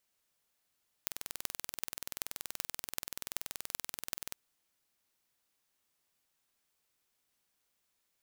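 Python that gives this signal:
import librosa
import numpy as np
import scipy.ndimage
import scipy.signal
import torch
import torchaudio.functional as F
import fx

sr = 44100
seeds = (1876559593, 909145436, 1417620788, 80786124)

y = fx.impulse_train(sr, length_s=3.28, per_s=20.9, accent_every=8, level_db=-5.5)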